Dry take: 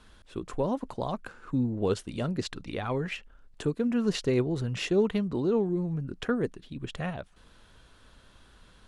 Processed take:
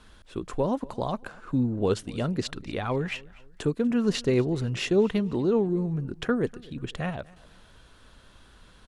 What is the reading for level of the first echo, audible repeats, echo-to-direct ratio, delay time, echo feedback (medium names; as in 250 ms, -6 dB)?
-23.0 dB, 2, -22.5 dB, 244 ms, 36%